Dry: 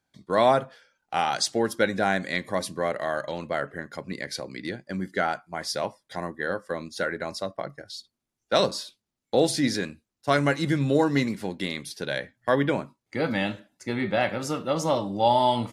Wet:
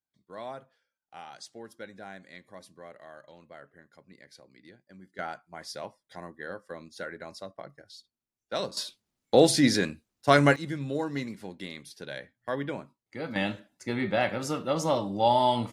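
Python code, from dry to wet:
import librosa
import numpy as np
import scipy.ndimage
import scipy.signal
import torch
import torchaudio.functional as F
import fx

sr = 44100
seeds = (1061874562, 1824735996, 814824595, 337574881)

y = fx.gain(x, sr, db=fx.steps((0.0, -20.0), (5.19, -10.0), (8.77, 2.5), (10.56, -9.5), (13.36, -2.0)))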